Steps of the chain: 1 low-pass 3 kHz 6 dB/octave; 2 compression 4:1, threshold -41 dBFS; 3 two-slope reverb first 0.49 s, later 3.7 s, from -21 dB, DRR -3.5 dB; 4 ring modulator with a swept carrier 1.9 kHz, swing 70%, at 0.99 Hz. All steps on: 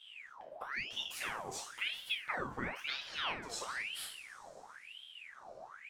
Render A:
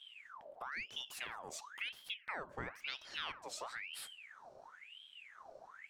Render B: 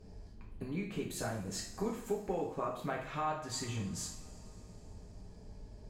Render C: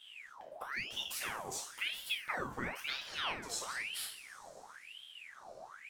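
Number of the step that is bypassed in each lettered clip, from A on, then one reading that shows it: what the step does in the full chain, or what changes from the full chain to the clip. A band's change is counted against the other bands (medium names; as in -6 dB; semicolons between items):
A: 3, loudness change -5.5 LU; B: 4, momentary loudness spread change +3 LU; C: 1, 8 kHz band +4.0 dB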